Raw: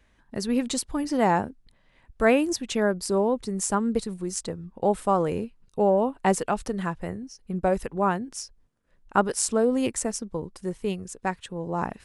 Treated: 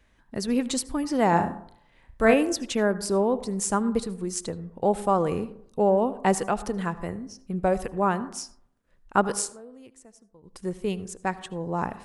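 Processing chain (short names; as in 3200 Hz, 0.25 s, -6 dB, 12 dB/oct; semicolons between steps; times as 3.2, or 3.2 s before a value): 1.29–2.34 flutter echo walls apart 6.1 m, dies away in 0.34 s; 9.38–10.56 dip -23.5 dB, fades 0.13 s; reverb RT60 0.65 s, pre-delay 67 ms, DRR 15.5 dB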